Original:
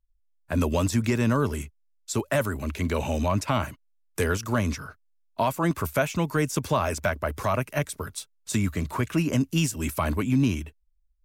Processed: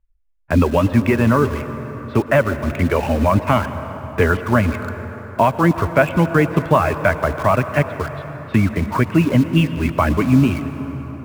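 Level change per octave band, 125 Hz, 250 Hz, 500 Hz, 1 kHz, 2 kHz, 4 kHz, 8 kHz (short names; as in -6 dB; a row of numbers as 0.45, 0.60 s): +9.0, +9.0, +10.0, +10.0, +9.5, +3.0, -5.5 dB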